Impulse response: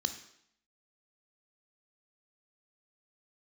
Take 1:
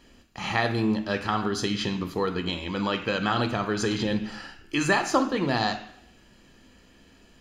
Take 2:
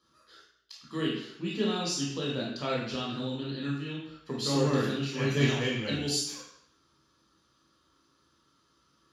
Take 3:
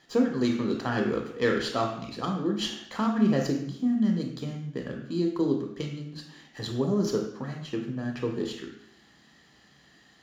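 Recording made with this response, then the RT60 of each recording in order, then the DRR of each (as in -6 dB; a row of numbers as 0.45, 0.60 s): 1; 0.70, 0.70, 0.70 s; 7.0, -5.0, 1.5 dB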